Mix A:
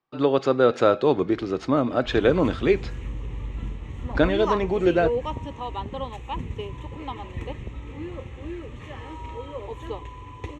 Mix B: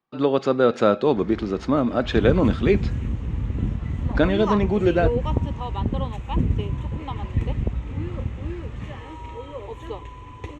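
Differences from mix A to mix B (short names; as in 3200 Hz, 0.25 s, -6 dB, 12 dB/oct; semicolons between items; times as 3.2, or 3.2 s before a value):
speech: add bell 210 Hz +12.5 dB 0.24 oct; first sound +12.0 dB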